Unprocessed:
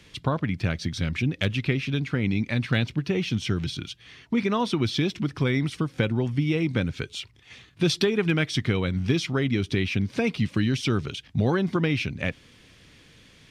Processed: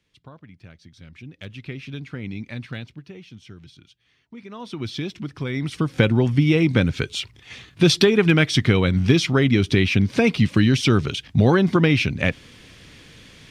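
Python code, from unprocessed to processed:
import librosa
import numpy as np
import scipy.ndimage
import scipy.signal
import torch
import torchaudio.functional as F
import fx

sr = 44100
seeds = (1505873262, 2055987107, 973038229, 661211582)

y = fx.gain(x, sr, db=fx.line((0.93, -19.0), (1.87, -7.0), (2.59, -7.0), (3.24, -16.5), (4.42, -16.5), (4.86, -4.0), (5.47, -4.0), (5.94, 7.0)))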